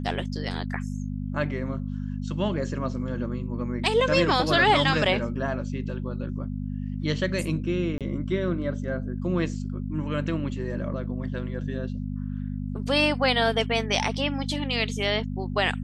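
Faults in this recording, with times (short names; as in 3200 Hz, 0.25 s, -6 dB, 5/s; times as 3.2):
hum 50 Hz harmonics 5 -31 dBFS
7.98–8.01 gap 27 ms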